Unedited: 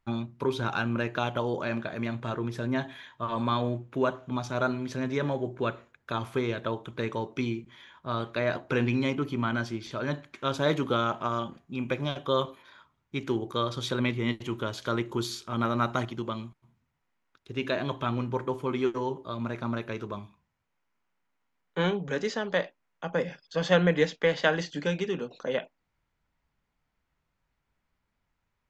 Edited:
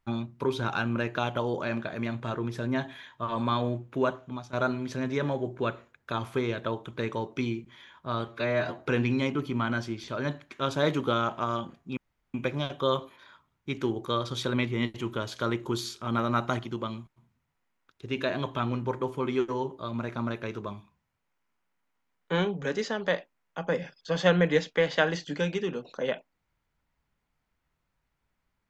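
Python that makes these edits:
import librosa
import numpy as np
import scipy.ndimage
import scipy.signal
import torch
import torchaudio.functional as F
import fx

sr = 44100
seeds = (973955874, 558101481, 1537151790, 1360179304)

y = fx.edit(x, sr, fx.fade_out_to(start_s=4.1, length_s=0.43, floor_db=-15.0),
    fx.stretch_span(start_s=8.28, length_s=0.34, factor=1.5),
    fx.insert_room_tone(at_s=11.8, length_s=0.37), tone=tone)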